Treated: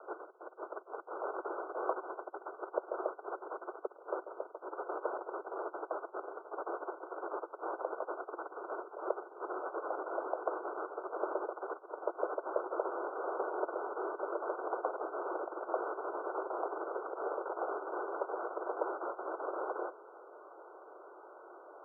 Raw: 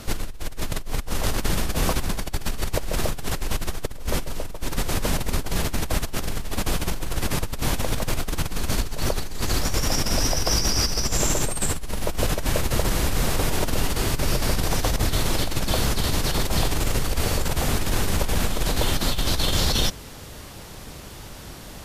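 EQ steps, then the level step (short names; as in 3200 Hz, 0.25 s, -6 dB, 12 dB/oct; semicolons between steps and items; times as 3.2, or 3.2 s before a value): steep high-pass 350 Hz 72 dB/oct; Chebyshev low-pass 1500 Hz, order 10; air absorption 260 m; -4.5 dB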